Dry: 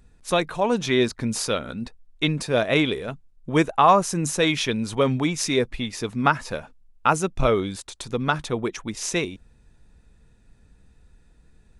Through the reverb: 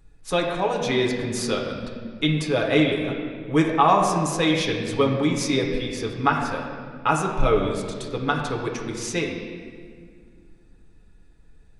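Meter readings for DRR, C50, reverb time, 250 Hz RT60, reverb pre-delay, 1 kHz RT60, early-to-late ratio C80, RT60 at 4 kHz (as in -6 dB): -1.0 dB, 4.0 dB, 1.9 s, 2.9 s, 6 ms, 1.7 s, 5.0 dB, 1.4 s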